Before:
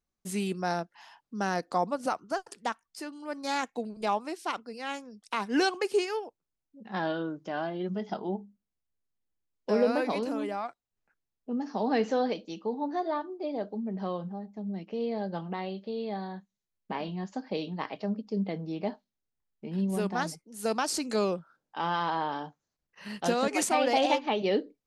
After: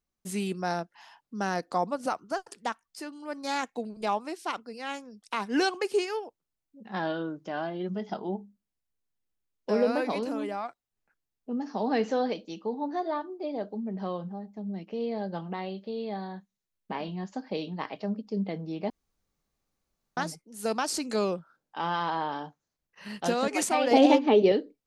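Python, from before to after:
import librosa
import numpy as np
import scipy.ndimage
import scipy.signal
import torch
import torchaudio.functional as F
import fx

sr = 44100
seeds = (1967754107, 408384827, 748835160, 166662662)

y = fx.small_body(x, sr, hz=(280.0, 420.0), ring_ms=35, db=13, at=(23.91, 24.52))
y = fx.edit(y, sr, fx.room_tone_fill(start_s=18.9, length_s=1.27), tone=tone)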